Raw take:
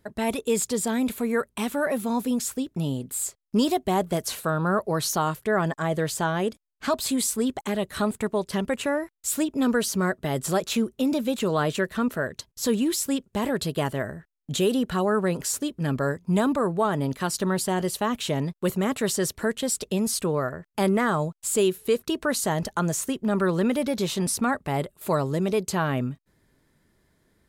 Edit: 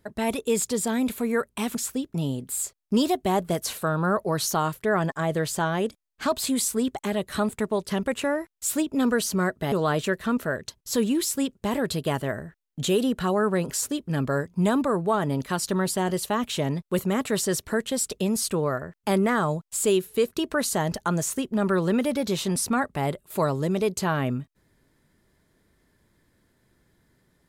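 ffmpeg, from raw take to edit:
-filter_complex "[0:a]asplit=3[a][b][c];[a]atrim=end=1.752[d];[b]atrim=start=2.368:end=10.342[e];[c]atrim=start=11.428[f];[d][e]acrossfade=d=0.004:c1=hsin:c2=hsin[g];[g][f]acrossfade=d=0.004:c1=hsin:c2=hsin"

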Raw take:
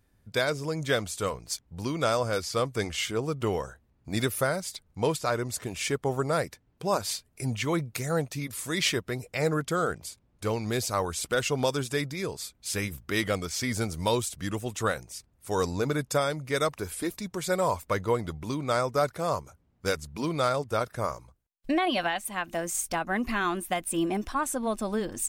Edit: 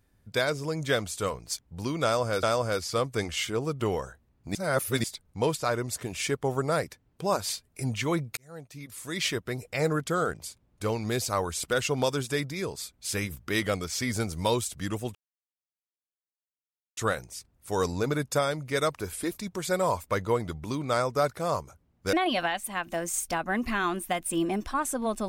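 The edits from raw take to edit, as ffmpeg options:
-filter_complex "[0:a]asplit=7[a][b][c][d][e][f][g];[a]atrim=end=2.432[h];[b]atrim=start=2.038:end=4.162[i];[c]atrim=start=4.158:end=4.652,asetpts=PTS-STARTPTS,areverse[j];[d]atrim=start=4.648:end=7.98,asetpts=PTS-STARTPTS,afade=t=out:st=3.328:d=0.004:c=hsin[k];[e]atrim=start=7.98:end=14.76,asetpts=PTS-STARTPTS,afade=t=in:d=1.21,afade=t=out:st=6.776:d=0.004:c=hsin,apad=pad_dur=1.82[l];[f]atrim=start=14.76:end=19.922,asetpts=PTS-STARTPTS,afade=t=in:d=0.004:c=hsin[m];[g]atrim=start=21.738[n];[h][i]acrossfade=d=0.004:c1=hsin:c2=hsin[o];[o][j]acrossfade=d=0.004:c1=hsin:c2=hsin[p];[k][l][m]concat=n=3:v=0:a=1[q];[p][q]acrossfade=d=0.004:c1=hsin:c2=hsin[r];[r][n]acrossfade=d=0.004:c1=hsin:c2=hsin"

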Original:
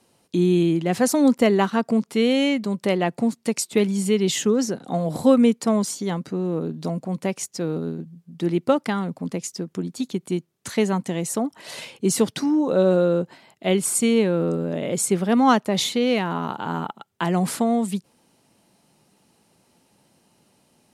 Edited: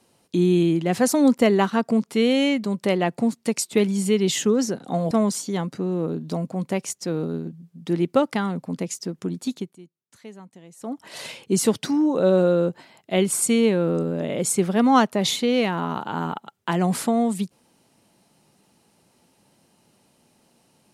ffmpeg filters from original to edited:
-filter_complex "[0:a]asplit=4[a][b][c][d];[a]atrim=end=5.112[e];[b]atrim=start=5.638:end=10.3,asetpts=PTS-STARTPTS,afade=t=out:st=4.402:d=0.26:silence=0.0944061[f];[c]atrim=start=10.3:end=11.32,asetpts=PTS-STARTPTS,volume=-20.5dB[g];[d]atrim=start=11.32,asetpts=PTS-STARTPTS,afade=t=in:d=0.26:silence=0.0944061[h];[f][g][h]concat=n=3:v=0:a=1[i];[e][i]acrossfade=d=0.004:c1=hsin:c2=hsin"

